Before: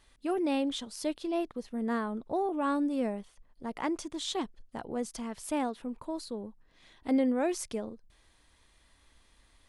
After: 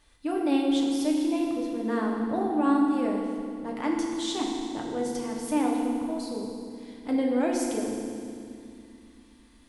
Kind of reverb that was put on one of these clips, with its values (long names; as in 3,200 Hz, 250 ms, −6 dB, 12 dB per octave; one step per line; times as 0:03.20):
feedback delay network reverb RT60 2.3 s, low-frequency decay 1.6×, high-frequency decay 0.95×, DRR −1.5 dB